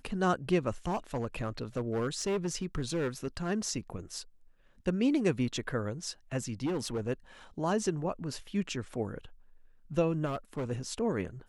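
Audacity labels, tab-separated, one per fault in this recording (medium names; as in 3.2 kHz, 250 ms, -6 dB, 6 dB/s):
0.870000	3.500000	clipped -27 dBFS
6.650000	7.090000	clipped -28.5 dBFS
10.250000	10.720000	clipped -30.5 dBFS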